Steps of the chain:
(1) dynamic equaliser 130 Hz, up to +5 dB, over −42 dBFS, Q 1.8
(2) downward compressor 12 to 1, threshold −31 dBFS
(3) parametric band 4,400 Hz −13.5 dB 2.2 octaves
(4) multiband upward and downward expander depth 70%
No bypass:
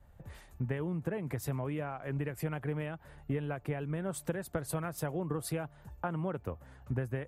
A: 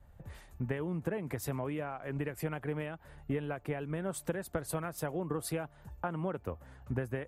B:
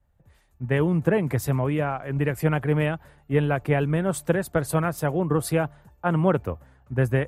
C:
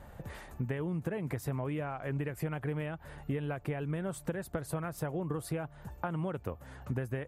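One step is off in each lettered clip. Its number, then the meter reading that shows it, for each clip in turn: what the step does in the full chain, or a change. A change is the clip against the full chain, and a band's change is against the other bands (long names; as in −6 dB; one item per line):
1, 125 Hz band −3.0 dB
2, average gain reduction 9.5 dB
4, 8 kHz band −4.0 dB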